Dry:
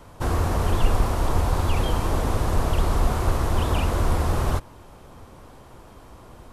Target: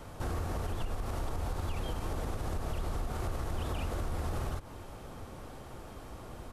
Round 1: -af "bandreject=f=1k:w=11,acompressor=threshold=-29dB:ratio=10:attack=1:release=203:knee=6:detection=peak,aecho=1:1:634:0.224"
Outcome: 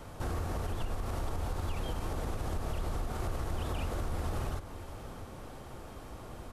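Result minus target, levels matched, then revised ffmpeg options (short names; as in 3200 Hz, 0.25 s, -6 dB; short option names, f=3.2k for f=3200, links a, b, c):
echo-to-direct +9 dB
-af "bandreject=f=1k:w=11,acompressor=threshold=-29dB:ratio=10:attack=1:release=203:knee=6:detection=peak,aecho=1:1:634:0.0794"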